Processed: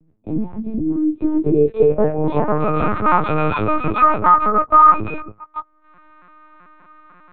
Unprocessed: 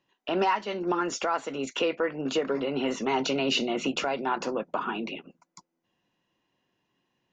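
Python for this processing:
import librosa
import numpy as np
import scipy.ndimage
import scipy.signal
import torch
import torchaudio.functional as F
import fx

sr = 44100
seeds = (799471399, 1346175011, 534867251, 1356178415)

y = fx.freq_snap(x, sr, grid_st=6)
y = fx.peak_eq(y, sr, hz=300.0, db=6.0, octaves=0.99)
y = 10.0 ** (-21.5 / 20.0) * np.tanh(y / 10.0 ** (-21.5 / 20.0))
y = fx.filter_sweep_lowpass(y, sr, from_hz=180.0, to_hz=1300.0, start_s=0.79, end_s=2.78, q=7.4)
y = fx.lpc_vocoder(y, sr, seeds[0], excitation='pitch_kept', order=8)
y = fx.band_squash(y, sr, depth_pct=40)
y = y * 10.0 ** (7.0 / 20.0)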